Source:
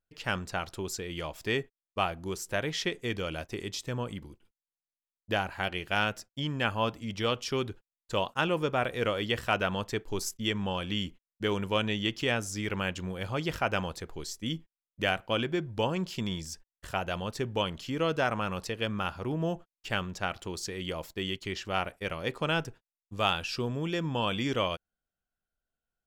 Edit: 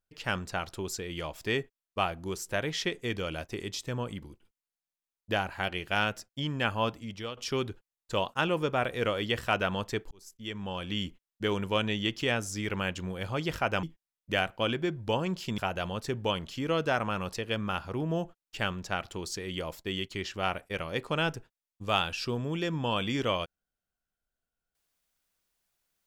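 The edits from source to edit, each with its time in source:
6.88–7.37 s: fade out, to -14 dB
10.11–11.06 s: fade in
13.83–14.53 s: delete
16.28–16.89 s: delete

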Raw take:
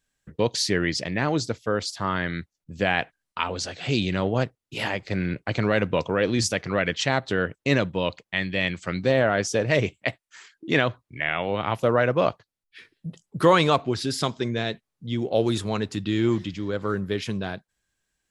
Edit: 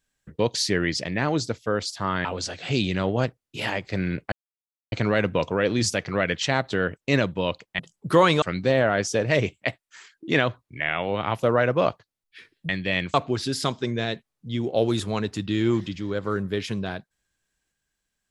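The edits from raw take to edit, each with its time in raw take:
2.25–3.43 s: delete
5.50 s: insert silence 0.60 s
8.37–8.82 s: swap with 13.09–13.72 s

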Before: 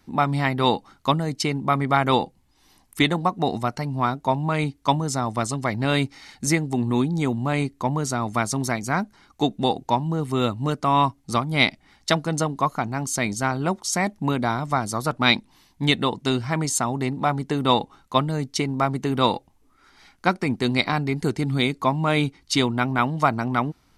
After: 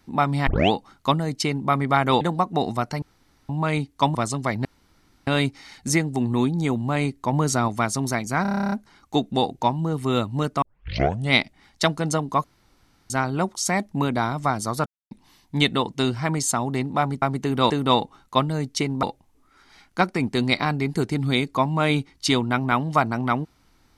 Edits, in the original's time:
0.47 s: tape start 0.25 s
2.21–3.07 s: delete
3.88–4.35 s: room tone
5.01–5.34 s: delete
5.84 s: insert room tone 0.62 s
7.90–8.25 s: gain +3.5 dB
8.99 s: stutter 0.03 s, 11 plays
10.89 s: tape start 0.71 s
12.71–13.37 s: room tone
15.13–15.38 s: mute
18.82–19.30 s: move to 17.49 s

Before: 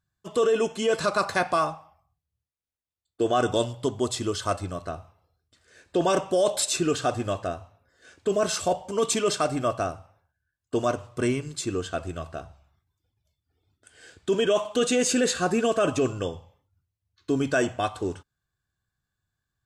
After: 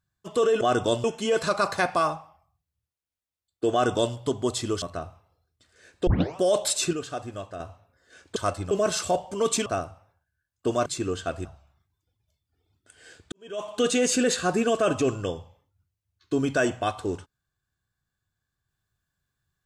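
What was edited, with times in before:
3.29–3.72 s: copy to 0.61 s
4.39–4.74 s: move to 8.28 s
5.99 s: tape start 0.30 s
6.85–7.52 s: gain -8 dB
9.23–9.74 s: delete
10.94–11.53 s: delete
12.12–12.42 s: delete
14.29–14.75 s: fade in quadratic

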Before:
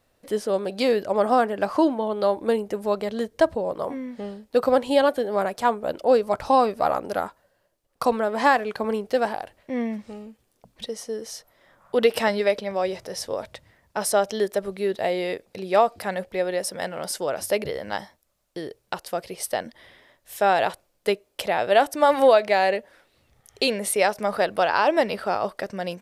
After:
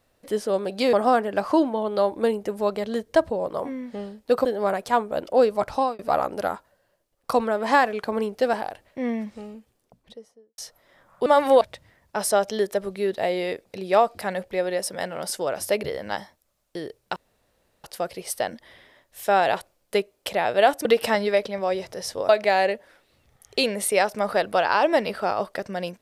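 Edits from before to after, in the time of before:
0.93–1.18 s: delete
4.70–5.17 s: delete
6.30–6.71 s: fade out equal-power
10.25–11.30 s: studio fade out
11.98–13.42 s: swap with 21.98–22.33 s
18.97 s: insert room tone 0.68 s

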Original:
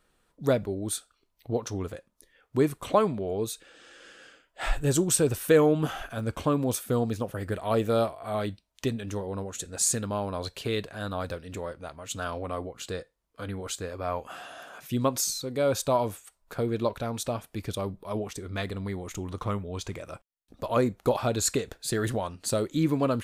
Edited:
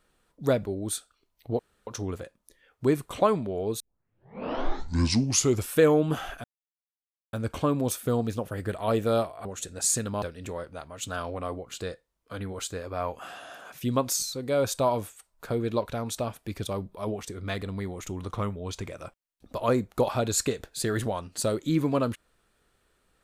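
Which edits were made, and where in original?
1.59 s: insert room tone 0.28 s
3.52 s: tape start 1.99 s
6.16 s: insert silence 0.89 s
8.28–9.42 s: delete
10.19–11.30 s: delete

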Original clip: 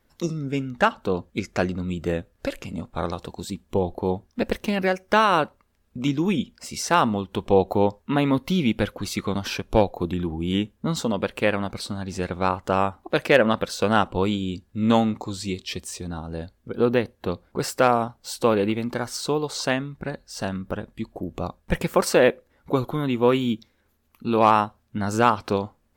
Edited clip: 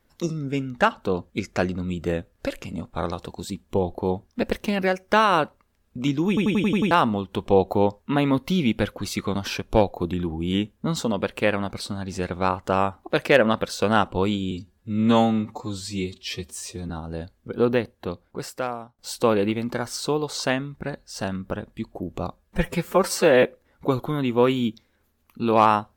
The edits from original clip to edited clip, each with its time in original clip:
6.28 s: stutter in place 0.09 s, 7 plays
14.51–16.10 s: stretch 1.5×
16.85–18.19 s: fade out, to -20.5 dB
21.57–22.28 s: stretch 1.5×

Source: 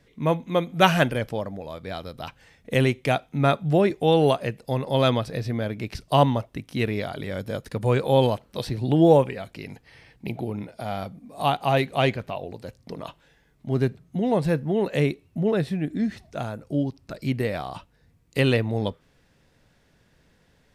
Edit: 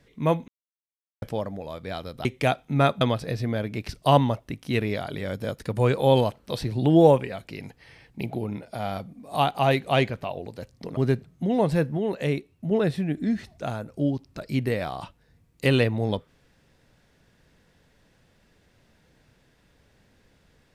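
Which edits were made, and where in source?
0.48–1.22 s: mute
2.25–2.89 s: delete
3.65–5.07 s: delete
13.03–13.70 s: delete
14.70–15.44 s: gain -3.5 dB

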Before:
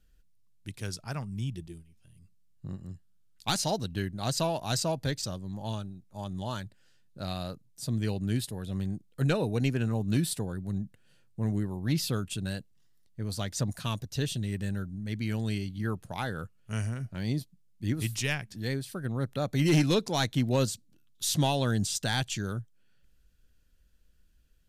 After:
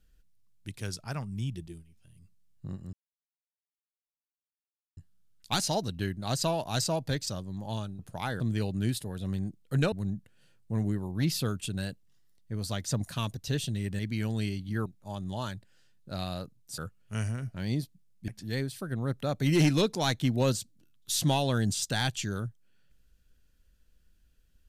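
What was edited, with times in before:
2.93 s: insert silence 2.04 s
5.95–7.87 s: swap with 15.95–16.36 s
9.39–10.60 s: delete
14.67–15.08 s: delete
17.86–18.41 s: delete

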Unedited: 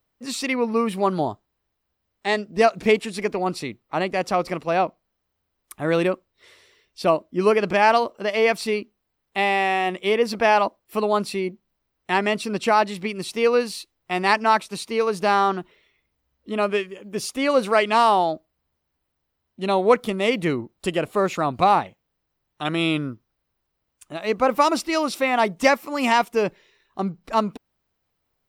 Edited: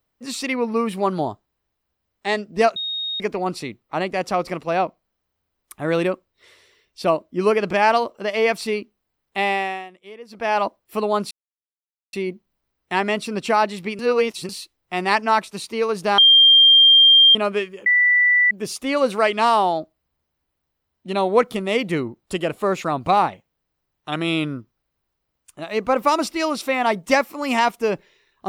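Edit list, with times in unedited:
2.76–3.20 s: bleep 3.73 kHz -23.5 dBFS
9.51–10.66 s: dip -19.5 dB, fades 0.38 s
11.31 s: insert silence 0.82 s
13.17–13.67 s: reverse
15.36–16.53 s: bleep 3.19 kHz -8 dBFS
17.04 s: add tone 1.97 kHz -12.5 dBFS 0.65 s

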